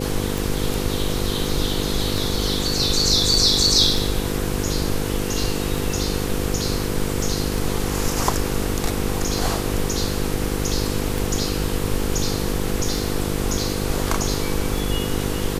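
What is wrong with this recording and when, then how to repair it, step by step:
buzz 50 Hz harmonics 10 -26 dBFS
tick 33 1/3 rpm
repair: de-click; de-hum 50 Hz, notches 10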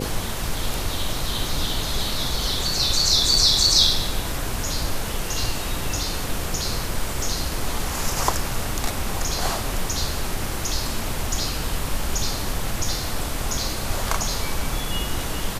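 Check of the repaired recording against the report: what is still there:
nothing left

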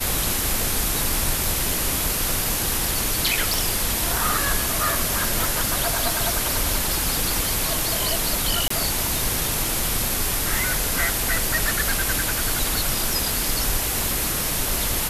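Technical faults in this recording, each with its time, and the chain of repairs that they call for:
3.54 s: pop
5.44 s: pop
8.68–8.70 s: dropout 24 ms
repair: de-click; interpolate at 8.68 s, 24 ms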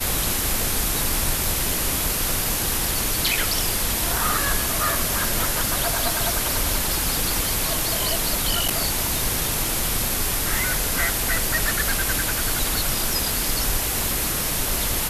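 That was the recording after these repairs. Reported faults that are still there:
nothing left

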